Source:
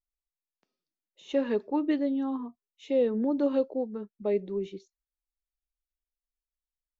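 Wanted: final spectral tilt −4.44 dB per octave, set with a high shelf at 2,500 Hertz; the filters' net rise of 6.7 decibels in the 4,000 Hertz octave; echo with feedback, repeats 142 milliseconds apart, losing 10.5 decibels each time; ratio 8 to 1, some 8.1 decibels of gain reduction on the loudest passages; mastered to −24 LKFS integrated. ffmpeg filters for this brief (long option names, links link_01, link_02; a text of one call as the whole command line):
ffmpeg -i in.wav -af "highshelf=frequency=2500:gain=4.5,equalizer=frequency=4000:width_type=o:gain=5,acompressor=threshold=-29dB:ratio=8,aecho=1:1:142|284|426:0.299|0.0896|0.0269,volume=10.5dB" out.wav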